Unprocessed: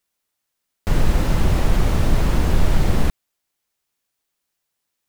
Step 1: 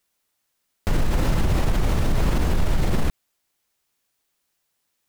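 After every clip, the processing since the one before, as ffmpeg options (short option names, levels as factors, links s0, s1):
-af "alimiter=limit=0.158:level=0:latency=1:release=51,volume=1.5"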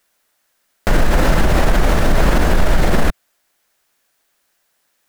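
-af "equalizer=f=100:t=o:w=0.67:g=-11,equalizer=f=630:t=o:w=0.67:g=5,equalizer=f=1600:t=o:w=0.67:g=6,volume=2.51"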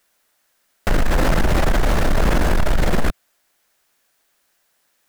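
-af "asoftclip=type=tanh:threshold=0.299"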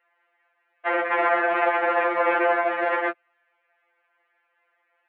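-af "highpass=f=360:t=q:w=0.5412,highpass=f=360:t=q:w=1.307,lowpass=f=2400:t=q:w=0.5176,lowpass=f=2400:t=q:w=0.7071,lowpass=f=2400:t=q:w=1.932,afreqshift=58,afftfilt=real='re*2.83*eq(mod(b,8),0)':imag='im*2.83*eq(mod(b,8),0)':win_size=2048:overlap=0.75,volume=1.88"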